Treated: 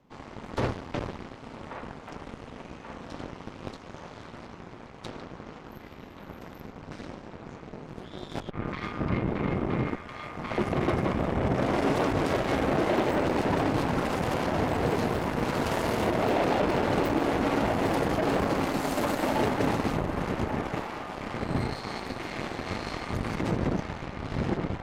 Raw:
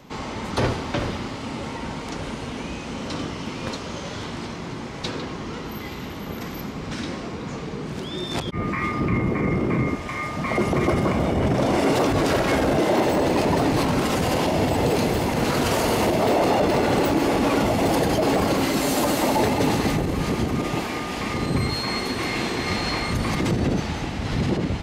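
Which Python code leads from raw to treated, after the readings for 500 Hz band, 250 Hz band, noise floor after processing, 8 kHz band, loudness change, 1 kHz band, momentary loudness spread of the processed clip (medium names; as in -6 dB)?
-6.0 dB, -6.5 dB, -46 dBFS, -12.5 dB, -5.0 dB, -5.5 dB, 18 LU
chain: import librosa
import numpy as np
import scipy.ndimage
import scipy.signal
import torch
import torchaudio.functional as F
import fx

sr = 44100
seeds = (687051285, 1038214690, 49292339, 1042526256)

y = fx.high_shelf(x, sr, hz=2100.0, db=-9.5)
y = fx.cheby_harmonics(y, sr, harmonics=(7, 8), levels_db=(-20, -20), full_scale_db=-9.5)
y = fx.echo_wet_bandpass(y, sr, ms=1134, feedback_pct=62, hz=1300.0, wet_db=-7.5)
y = y * librosa.db_to_amplitude(-5.0)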